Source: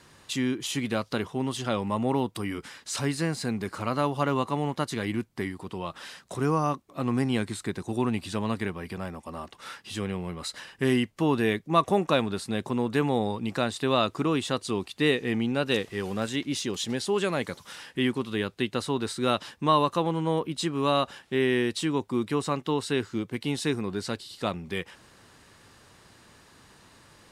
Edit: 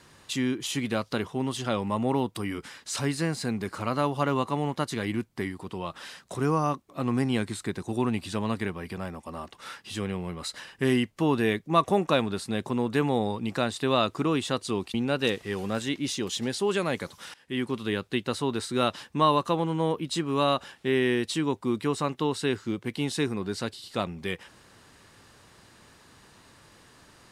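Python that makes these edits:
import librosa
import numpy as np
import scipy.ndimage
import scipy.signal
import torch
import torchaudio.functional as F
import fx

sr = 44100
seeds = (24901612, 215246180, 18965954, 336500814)

y = fx.edit(x, sr, fx.cut(start_s=14.94, length_s=0.47),
    fx.fade_in_from(start_s=17.81, length_s=0.41, floor_db=-19.5), tone=tone)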